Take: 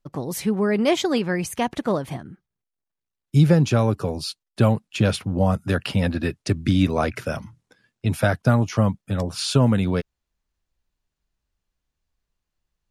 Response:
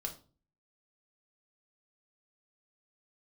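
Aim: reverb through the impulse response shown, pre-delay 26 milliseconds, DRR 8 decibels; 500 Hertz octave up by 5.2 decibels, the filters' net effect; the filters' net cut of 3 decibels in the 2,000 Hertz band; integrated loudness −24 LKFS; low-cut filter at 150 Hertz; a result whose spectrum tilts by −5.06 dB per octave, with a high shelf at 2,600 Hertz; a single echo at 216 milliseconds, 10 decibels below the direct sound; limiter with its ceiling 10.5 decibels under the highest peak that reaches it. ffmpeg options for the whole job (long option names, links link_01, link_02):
-filter_complex "[0:a]highpass=150,equalizer=frequency=500:width_type=o:gain=6.5,equalizer=frequency=2000:width_type=o:gain=-7.5,highshelf=frequency=2600:gain=6,alimiter=limit=-14dB:level=0:latency=1,aecho=1:1:216:0.316,asplit=2[link_01][link_02];[1:a]atrim=start_sample=2205,adelay=26[link_03];[link_02][link_03]afir=irnorm=-1:irlink=0,volume=-7.5dB[link_04];[link_01][link_04]amix=inputs=2:normalize=0"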